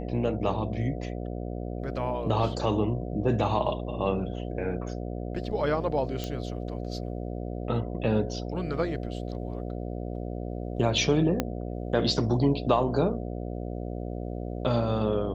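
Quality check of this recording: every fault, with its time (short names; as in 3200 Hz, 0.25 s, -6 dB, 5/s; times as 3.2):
buzz 60 Hz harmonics 12 -34 dBFS
6.24 pop -18 dBFS
11.4 pop -11 dBFS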